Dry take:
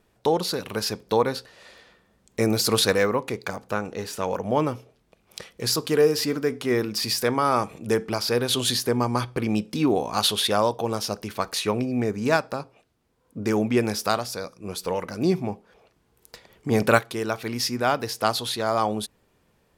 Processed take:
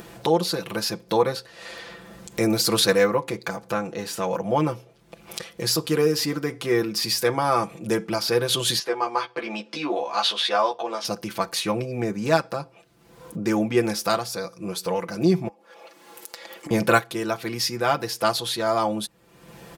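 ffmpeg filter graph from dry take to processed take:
-filter_complex "[0:a]asettb=1/sr,asplit=3[s0][s1][s2];[s0]atrim=end=8.794[s3];[s1]atrim=start=8.79:end=11.05,asetpts=PTS-STARTPTS,afade=t=in:d=0.004:c=qsin,afade=t=out:st=2.256:d=0.004:c=qsin,highpass=550,lowpass=4300,asplit=2[s4][s5];[s5]adelay=14,volume=0.631[s6];[s4][s6]amix=inputs=2:normalize=0,atrim=end_sample=99666[s7];[s2]atrim=start=11.046[s8];[s3][s7]acrossfade=d=0.004:c1=hsin:c2=qsin[s9];[s9][s8]acrossfade=d=0.004:c1=qsin:c2=hsin,asettb=1/sr,asplit=3[s10][s11][s12];[s10]atrim=end=15.484[s13];[s11]atrim=start=15.48:end=16.71,asetpts=PTS-STARTPTS,afade=t=in:d=0.004:c=qsin,afade=t=out:st=1.226:d=0.004:c=qsin,highpass=410,aecho=1:1:3.6:0.47,atrim=end_sample=54243,acompressor=threshold=0.00501:ratio=8:attack=3.2:release=140:knee=1:detection=peak[s14];[s12]atrim=start=16.706[s15];[s13][s14]acrossfade=d=0.004:c1=hsin:c2=qsin[s16];[s16][s15]acrossfade=d=0.004:c1=qsin:c2=hsin,highpass=61,aecho=1:1:5.9:0.77,acompressor=mode=upward:threshold=0.0562:ratio=2.5,volume=0.891"

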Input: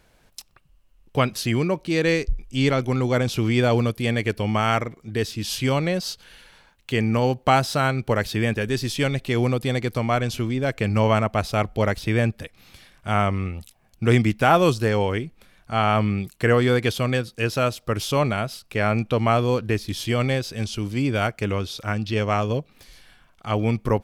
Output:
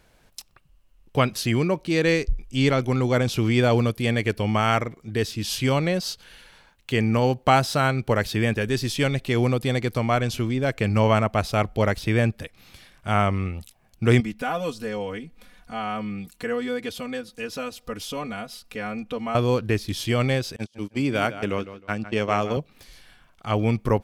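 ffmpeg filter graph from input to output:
-filter_complex "[0:a]asettb=1/sr,asplit=3[s0][s1][s2];[s0]atrim=end=14.204[s3];[s1]atrim=start=14.2:end=19.35,asetpts=PTS-STARTPTS,afade=t=in:d=0.004:c=qsin,afade=t=out:st=5.146:d=0.004:c=qsin,acompressor=threshold=0.00398:ratio=1.5:attack=3.2:release=140:knee=1:detection=peak,aecho=1:1:4.1:0.91,atrim=end_sample=227115[s4];[s2]atrim=start=19.346[s5];[s3][s4]acrossfade=d=0.004:c1=hsin:c2=qsin[s6];[s6][s5]acrossfade=d=0.004:c1=qsin:c2=hsin,asettb=1/sr,asplit=3[s7][s8][s9];[s7]atrim=end=20.564[s10];[s8]atrim=start=20.56:end=22.57,asetpts=PTS-STARTPTS,afade=t=in:d=0.004:c=qsin,afade=t=out:st=2.006:d=0.004:c=qsin,highpass=150,agate=range=0.02:threshold=0.0355:ratio=16:release=100:detection=peak,asplit=2[s11][s12];[s12]adelay=156,lowpass=f=4300:p=1,volume=0.224,asplit=2[s13][s14];[s14]adelay=156,lowpass=f=4300:p=1,volume=0.26,asplit=2[s15][s16];[s16]adelay=156,lowpass=f=4300:p=1,volume=0.26[s17];[s11][s13][s15][s17]amix=inputs=4:normalize=0,atrim=end_sample=88641[s18];[s9]atrim=start=22.566[s19];[s10][s18]acrossfade=d=0.004:c1=hsin:c2=qsin[s20];[s20][s19]acrossfade=d=0.004:c1=qsin:c2=hsin"

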